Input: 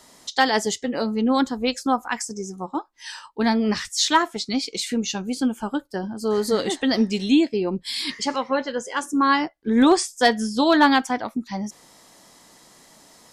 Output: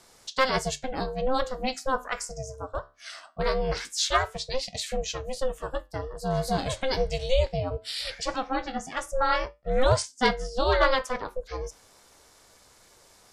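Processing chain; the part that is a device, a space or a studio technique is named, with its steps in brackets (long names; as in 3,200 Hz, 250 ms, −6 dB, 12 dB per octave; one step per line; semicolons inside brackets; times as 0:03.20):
0:10.02–0:10.98: low-pass filter 6,200 Hz 12 dB per octave
alien voice (ring modulation 260 Hz; flanger 0.2 Hz, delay 8.1 ms, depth 7.5 ms, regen −74%)
level +2 dB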